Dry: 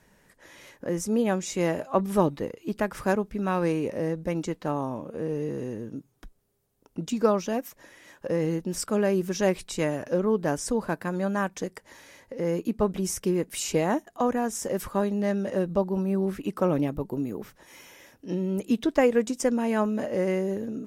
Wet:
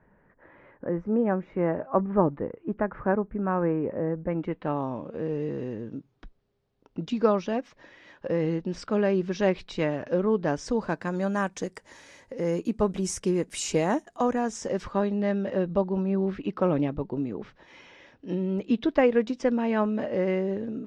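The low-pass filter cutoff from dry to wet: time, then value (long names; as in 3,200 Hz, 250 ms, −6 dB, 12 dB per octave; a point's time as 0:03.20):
low-pass filter 24 dB per octave
0:04.21 1,700 Hz
0:04.88 4,500 Hz
0:10.34 4,500 Hz
0:11.39 8,900 Hz
0:14.12 8,900 Hz
0:15.15 4,300 Hz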